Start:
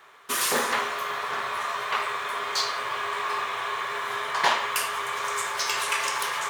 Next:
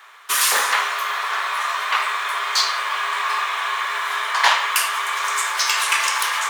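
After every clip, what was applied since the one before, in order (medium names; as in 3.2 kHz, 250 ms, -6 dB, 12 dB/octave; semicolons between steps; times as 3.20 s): high-pass 930 Hz 12 dB/octave; trim +8 dB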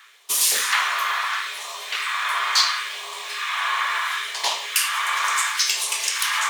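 phase shifter stages 2, 0.72 Hz, lowest notch 200–1500 Hz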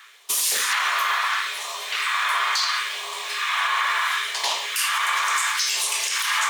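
peak limiter -14.5 dBFS, peak gain reduction 9.5 dB; trim +2 dB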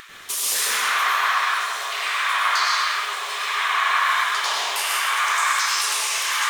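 vibrato 7.9 Hz 42 cents; upward compressor, threshold -33 dBFS; plate-style reverb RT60 2.1 s, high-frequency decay 0.45×, pre-delay 85 ms, DRR -4.5 dB; trim -3.5 dB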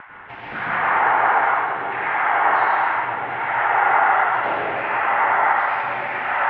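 mistuned SSB -290 Hz 360–2400 Hz; trim +4 dB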